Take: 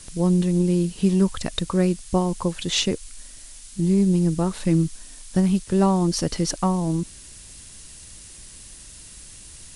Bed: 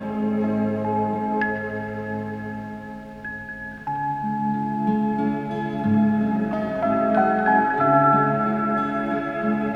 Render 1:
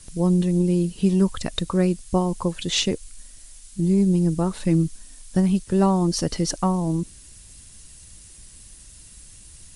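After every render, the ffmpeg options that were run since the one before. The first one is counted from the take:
ffmpeg -i in.wav -af "afftdn=noise_reduction=6:noise_floor=-44" out.wav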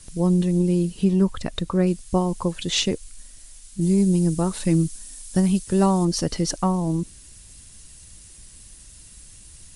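ffmpeg -i in.wav -filter_complex "[0:a]asettb=1/sr,asplit=3[link_01][link_02][link_03];[link_01]atrim=end=1.044[link_04];[link_02]atrim=start=1.04:end=1.87,asetpts=PTS-STARTPTS,afade=type=in:duration=0.004:curve=qsin,afade=type=out:start_time=0.826:duration=0.004:curve=qsin,highshelf=frequency=3600:gain=-7.5[link_05];[link_03]atrim=start=1.866[link_06];[link_04][link_05]acrossfade=duration=0.004:curve1=hsin:curve2=qsin[link_07];[link_07][link_06]acrossfade=duration=0.004:curve1=qsin:curve2=hsin,asettb=1/sr,asplit=3[link_08][link_09][link_10];[link_08]atrim=end=3.814[link_11];[link_09]atrim=start=3.81:end=6.05,asetpts=PTS-STARTPTS,afade=type=in:duration=0.004:curve=qsin,afade=type=out:start_time=2.236:duration=0.004:curve=qsin,highshelf=frequency=5000:gain=9[link_12];[link_10]atrim=start=6.046[link_13];[link_11][link_12]acrossfade=duration=0.004:curve1=hsin:curve2=qsin[link_14];[link_14][link_13]acrossfade=duration=0.004:curve1=qsin:curve2=hsin" out.wav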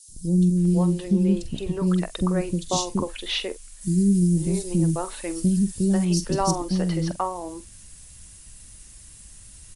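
ffmpeg -i in.wav -filter_complex "[0:a]asplit=2[link_01][link_02];[link_02]adelay=45,volume=-14dB[link_03];[link_01][link_03]amix=inputs=2:normalize=0,acrossover=split=370|4200[link_04][link_05][link_06];[link_04]adelay=80[link_07];[link_05]adelay=570[link_08];[link_07][link_08][link_06]amix=inputs=3:normalize=0" out.wav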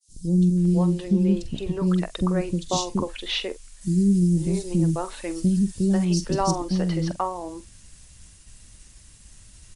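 ffmpeg -i in.wav -af "lowpass=7300,agate=range=-33dB:threshold=-46dB:ratio=3:detection=peak" out.wav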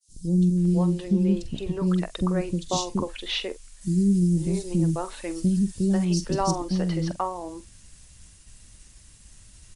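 ffmpeg -i in.wav -af "volume=-1.5dB" out.wav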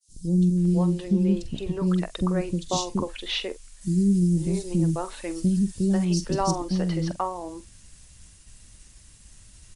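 ffmpeg -i in.wav -af anull out.wav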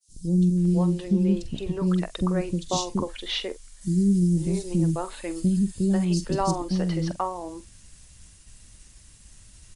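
ffmpeg -i in.wav -filter_complex "[0:a]asettb=1/sr,asplit=3[link_01][link_02][link_03];[link_01]atrim=end=2.934[link_04];[link_02]atrim=start=2.93:end=4.38,asetpts=PTS-STARTPTS,afade=type=in:duration=0.004:curve=qsin,afade=type=out:start_time=1.446:duration=0.004:curve=qsin,bandreject=frequency=2600:width=12[link_05];[link_03]atrim=start=4.376[link_06];[link_04][link_05]acrossfade=duration=0.004:curve1=hsin:curve2=qsin[link_07];[link_07][link_06]acrossfade=duration=0.004:curve1=qsin:curve2=hsin,asettb=1/sr,asplit=3[link_08][link_09][link_10];[link_08]atrim=end=4.924[link_11];[link_09]atrim=start=4.92:end=6.7,asetpts=PTS-STARTPTS,afade=type=in:duration=0.004:curve=qsin,afade=type=out:start_time=1.776:duration=0.004:curve=qsin,bandreject=frequency=5700:width=7.5[link_12];[link_10]atrim=start=6.696[link_13];[link_11][link_12]acrossfade=duration=0.004:curve1=hsin:curve2=qsin[link_14];[link_14][link_13]acrossfade=duration=0.004:curve1=qsin:curve2=hsin" out.wav

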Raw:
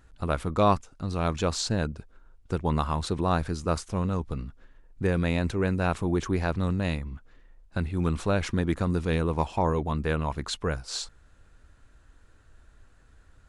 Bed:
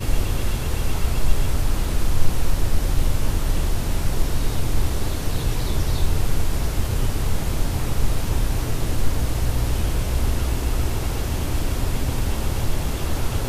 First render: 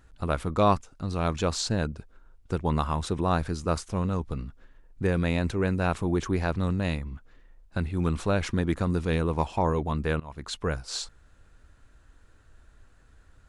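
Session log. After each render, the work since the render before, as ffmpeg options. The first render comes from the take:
ffmpeg -i in.wav -filter_complex "[0:a]asettb=1/sr,asplit=3[link_01][link_02][link_03];[link_01]atrim=end=2.844[link_04];[link_02]atrim=start=2.84:end=3.33,asetpts=PTS-STARTPTS,afade=type=in:duration=0.004:curve=qsin,afade=type=out:start_time=0.486:duration=0.004:curve=qsin,bandreject=frequency=4300:width=7.8[link_05];[link_03]atrim=start=3.326[link_06];[link_04][link_05]acrossfade=duration=0.004:curve1=hsin:curve2=qsin[link_07];[link_07][link_06]acrossfade=duration=0.004:curve1=qsin:curve2=hsin,asplit=2[link_08][link_09];[link_08]atrim=end=10.2,asetpts=PTS-STARTPTS,afade=type=out:start_time=10.196:duration=0.004:curve=hsin:silence=0.0891251[link_10];[link_09]atrim=start=10.2,asetpts=PTS-STARTPTS,afade=type=in:duration=0.45:silence=0.0891251[link_11];[link_10][link_11]concat=n=2:v=0:a=1" out.wav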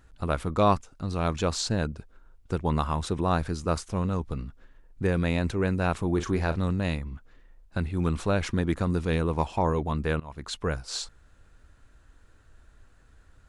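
ffmpeg -i in.wav -filter_complex "[0:a]asettb=1/sr,asplit=3[link_01][link_02][link_03];[link_01]atrim=end=6.144[link_04];[link_02]atrim=start=6.14:end=6.6,asetpts=PTS-STARTPTS,afade=type=in:duration=0.004:curve=qsin,afade=type=out:start_time=0.456:duration=0.004:curve=qsin,asplit=2[link_05][link_06];[link_06]adelay=37,volume=-10.5dB[link_07];[link_05][link_07]amix=inputs=2:normalize=0,atrim=end_sample=20286[link_08];[link_03]atrim=start=6.596[link_09];[link_04][link_08]acrossfade=duration=0.004:curve1=hsin:curve2=qsin[link_10];[link_10][link_09]acrossfade=duration=0.004:curve1=qsin:curve2=hsin" out.wav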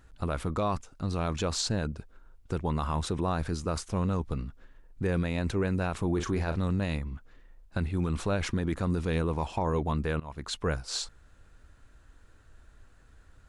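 ffmpeg -i in.wav -af "alimiter=limit=-19.5dB:level=0:latency=1:release=23" out.wav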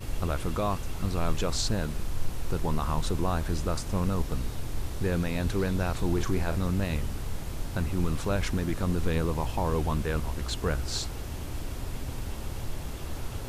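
ffmpeg -i in.wav -i bed.wav -filter_complex "[1:a]volume=-12dB[link_01];[0:a][link_01]amix=inputs=2:normalize=0" out.wav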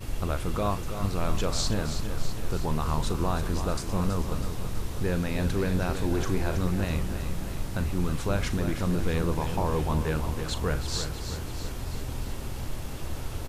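ffmpeg -i in.wav -filter_complex "[0:a]asplit=2[link_01][link_02];[link_02]adelay=39,volume=-13dB[link_03];[link_01][link_03]amix=inputs=2:normalize=0,aecho=1:1:325|650|975|1300|1625|1950|2275:0.355|0.213|0.128|0.0766|0.046|0.0276|0.0166" out.wav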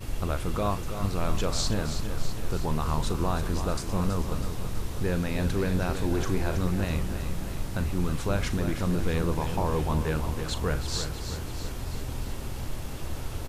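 ffmpeg -i in.wav -af anull out.wav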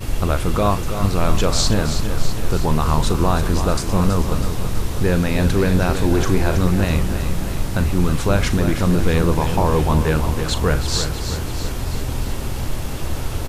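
ffmpeg -i in.wav -af "volume=10dB" out.wav

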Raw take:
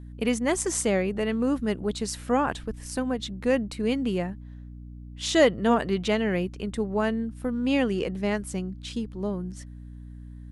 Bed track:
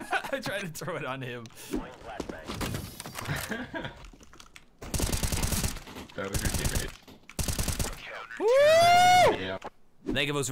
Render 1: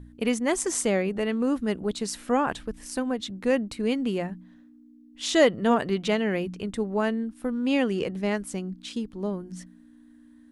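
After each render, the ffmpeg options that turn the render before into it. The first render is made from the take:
ffmpeg -i in.wav -af "bandreject=frequency=60:width_type=h:width=4,bandreject=frequency=120:width_type=h:width=4,bandreject=frequency=180:width_type=h:width=4" out.wav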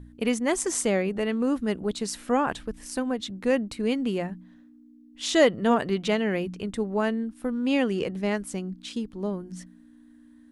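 ffmpeg -i in.wav -af anull out.wav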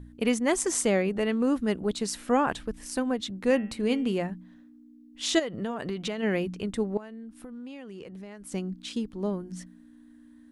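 ffmpeg -i in.wav -filter_complex "[0:a]asettb=1/sr,asplit=3[link_01][link_02][link_03];[link_01]atrim=end=3.454[link_04];[link_02]atrim=start=3.45:end=4.13,asetpts=PTS-STARTPTS,afade=type=in:duration=0.004:curve=qsin,afade=type=out:start_time=0.676:duration=0.004:curve=qsin,bandreject=frequency=113:width_type=h:width=4,bandreject=frequency=226:width_type=h:width=4,bandreject=frequency=339:width_type=h:width=4,bandreject=frequency=452:width_type=h:width=4,bandreject=frequency=565:width_type=h:width=4,bandreject=frequency=678:width_type=h:width=4,bandreject=frequency=791:width_type=h:width=4,bandreject=frequency=904:width_type=h:width=4,bandreject=frequency=1017:width_type=h:width=4,bandreject=frequency=1130:width_type=h:width=4,bandreject=frequency=1243:width_type=h:width=4,bandreject=frequency=1356:width_type=h:width=4,bandreject=frequency=1469:width_type=h:width=4,bandreject=frequency=1582:width_type=h:width=4,bandreject=frequency=1695:width_type=h:width=4,bandreject=frequency=1808:width_type=h:width=4,bandreject=frequency=1921:width_type=h:width=4,bandreject=frequency=2034:width_type=h:width=4,bandreject=frequency=2147:width_type=h:width=4,bandreject=frequency=2260:width_type=h:width=4,bandreject=frequency=2373:width_type=h:width=4,bandreject=frequency=2486:width_type=h:width=4,bandreject=frequency=2599:width_type=h:width=4,bandreject=frequency=2712:width_type=h:width=4,bandreject=frequency=2825:width_type=h:width=4,bandreject=frequency=2938:width_type=h:width=4,bandreject=frequency=3051:width_type=h:width=4,bandreject=frequency=3164:width_type=h:width=4,bandreject=frequency=3277:width_type=h:width=4,bandreject=frequency=3390:width_type=h:width=4,bandreject=frequency=3503:width_type=h:width=4[link_05];[link_03]atrim=start=4.126[link_06];[link_04][link_05]acrossfade=duration=0.004:curve1=hsin:curve2=qsin[link_07];[link_07][link_06]acrossfade=duration=0.004:curve1=qsin:curve2=hsin,asplit=3[link_08][link_09][link_10];[link_08]afade=type=out:start_time=5.38:duration=0.02[link_11];[link_09]acompressor=threshold=-27dB:ratio=12:attack=3.2:release=140:knee=1:detection=peak,afade=type=in:start_time=5.38:duration=0.02,afade=type=out:start_time=6.22:duration=0.02[link_12];[link_10]afade=type=in:start_time=6.22:duration=0.02[link_13];[link_11][link_12][link_13]amix=inputs=3:normalize=0,asettb=1/sr,asplit=3[link_14][link_15][link_16];[link_14]atrim=end=6.974[link_17];[link_15]atrim=start=6.97:end=8.52,asetpts=PTS-STARTPTS,afade=type=in:duration=0.004:curve=qsin,afade=type=out:start_time=1.546:duration=0.004:curve=qsin,acompressor=threshold=-39dB:ratio=8:attack=3.2:release=140:knee=1:detection=peak[link_18];[link_16]atrim=start=8.516[link_19];[link_17][link_18]acrossfade=duration=0.004:curve1=hsin:curve2=qsin[link_20];[link_20][link_19]acrossfade=duration=0.004:curve1=qsin:curve2=hsin" out.wav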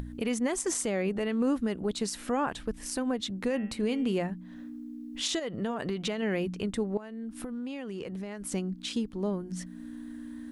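ffmpeg -i in.wav -af "acompressor=mode=upward:threshold=-30dB:ratio=2.5,alimiter=limit=-20dB:level=0:latency=1:release=94" out.wav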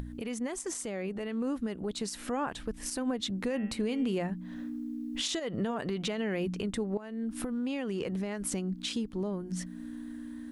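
ffmpeg -i in.wav -af "alimiter=level_in=3dB:limit=-24dB:level=0:latency=1:release=261,volume=-3dB,dynaudnorm=framelen=540:gausssize=7:maxgain=4dB" out.wav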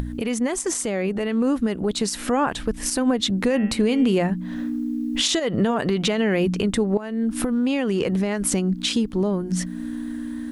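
ffmpeg -i in.wav -af "volume=11.5dB" out.wav

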